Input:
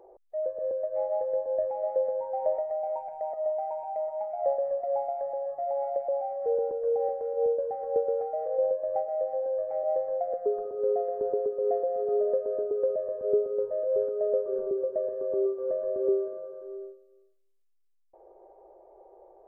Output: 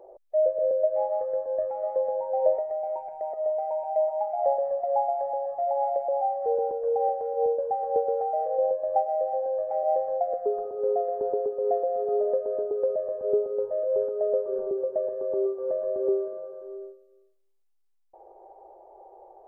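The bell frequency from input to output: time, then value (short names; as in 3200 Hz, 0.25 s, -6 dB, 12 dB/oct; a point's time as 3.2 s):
bell +9.5 dB 0.46 oct
0.86 s 600 Hz
1.28 s 1300 Hz
1.82 s 1300 Hz
2.67 s 370 Hz
3.2 s 370 Hz
4.29 s 820 Hz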